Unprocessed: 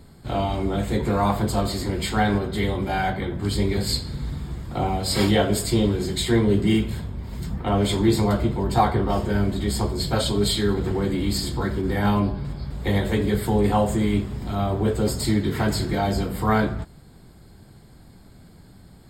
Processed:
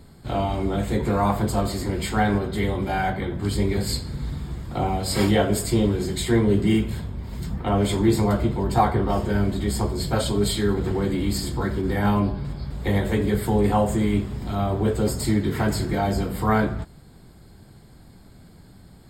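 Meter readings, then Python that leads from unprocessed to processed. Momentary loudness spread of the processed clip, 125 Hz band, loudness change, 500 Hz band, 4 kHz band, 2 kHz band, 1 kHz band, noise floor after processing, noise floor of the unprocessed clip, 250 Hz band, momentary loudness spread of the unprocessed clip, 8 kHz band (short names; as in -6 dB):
9 LU, 0.0 dB, 0.0 dB, 0.0 dB, -3.5 dB, -0.5 dB, 0.0 dB, -48 dBFS, -48 dBFS, 0.0 dB, 9 LU, -0.5 dB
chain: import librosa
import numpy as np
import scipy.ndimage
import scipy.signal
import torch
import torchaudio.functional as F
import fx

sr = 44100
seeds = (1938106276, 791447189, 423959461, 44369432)

y = fx.dynamic_eq(x, sr, hz=3900.0, q=1.6, threshold_db=-42.0, ratio=4.0, max_db=-5)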